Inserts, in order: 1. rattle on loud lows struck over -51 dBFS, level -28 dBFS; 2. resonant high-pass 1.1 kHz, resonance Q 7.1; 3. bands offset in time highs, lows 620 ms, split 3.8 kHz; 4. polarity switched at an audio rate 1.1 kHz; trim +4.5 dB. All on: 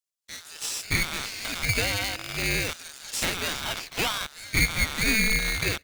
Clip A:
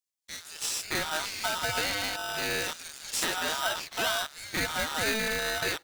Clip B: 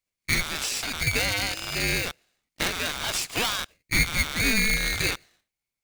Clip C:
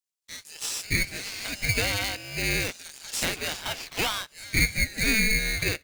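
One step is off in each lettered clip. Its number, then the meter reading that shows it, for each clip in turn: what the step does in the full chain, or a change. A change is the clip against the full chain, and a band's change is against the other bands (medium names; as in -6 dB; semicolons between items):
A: 2, 125 Hz band -10.0 dB; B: 3, momentary loudness spread change -4 LU; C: 1, 1 kHz band -2.0 dB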